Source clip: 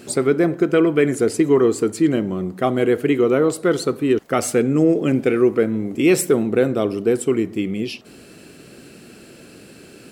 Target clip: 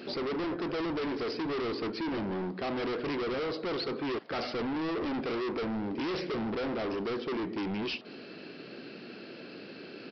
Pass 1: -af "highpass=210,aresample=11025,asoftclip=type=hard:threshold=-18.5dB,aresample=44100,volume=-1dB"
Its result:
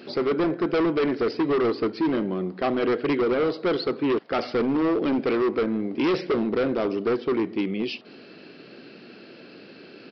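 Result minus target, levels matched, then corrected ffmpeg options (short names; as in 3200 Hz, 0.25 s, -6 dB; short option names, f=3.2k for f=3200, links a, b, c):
hard clip: distortion -6 dB
-af "highpass=210,aresample=11025,asoftclip=type=hard:threshold=-30.5dB,aresample=44100,volume=-1dB"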